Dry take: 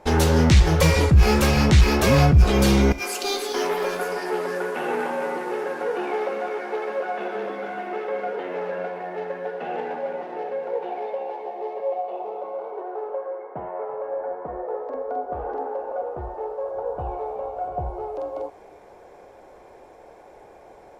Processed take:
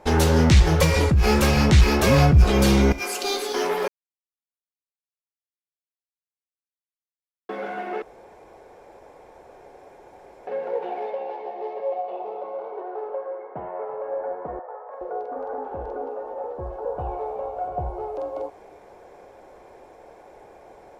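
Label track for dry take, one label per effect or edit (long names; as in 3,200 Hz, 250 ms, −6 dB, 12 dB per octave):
0.840000	1.240000	downward compressor, threshold −14 dBFS
3.880000	7.490000	silence
8.020000	10.470000	fill with room tone
11.110000	14.060000	Chebyshev low-pass filter 5,200 Hz
14.590000	16.850000	three-band delay without the direct sound mids, highs, lows 320/420 ms, splits 620/2,100 Hz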